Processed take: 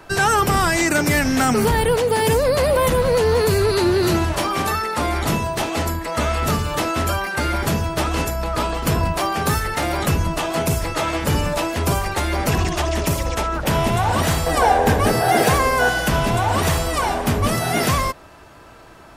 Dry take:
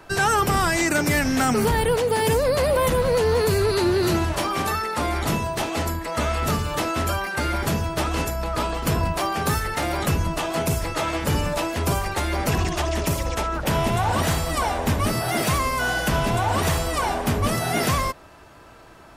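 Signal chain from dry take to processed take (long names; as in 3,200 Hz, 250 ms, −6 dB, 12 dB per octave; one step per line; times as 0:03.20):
0:14.46–0:15.89: hollow resonant body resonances 470/760/1,600 Hz, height 11 dB, ringing for 25 ms
level +3 dB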